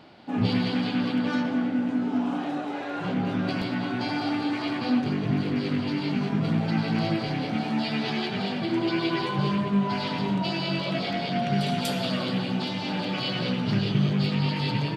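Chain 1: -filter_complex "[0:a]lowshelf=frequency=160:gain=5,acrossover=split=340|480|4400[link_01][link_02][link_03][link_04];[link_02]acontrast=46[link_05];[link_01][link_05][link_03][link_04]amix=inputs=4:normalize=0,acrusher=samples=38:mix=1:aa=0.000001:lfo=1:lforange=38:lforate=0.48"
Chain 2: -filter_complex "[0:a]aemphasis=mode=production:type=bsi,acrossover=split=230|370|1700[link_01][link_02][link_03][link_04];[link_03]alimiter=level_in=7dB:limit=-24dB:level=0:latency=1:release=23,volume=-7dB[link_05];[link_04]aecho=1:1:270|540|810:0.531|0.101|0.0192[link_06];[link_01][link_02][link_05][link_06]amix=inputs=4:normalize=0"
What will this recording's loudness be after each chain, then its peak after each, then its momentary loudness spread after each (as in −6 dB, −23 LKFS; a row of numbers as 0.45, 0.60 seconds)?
−24.0, −28.5 LKFS; −10.0, −9.5 dBFS; 5, 4 LU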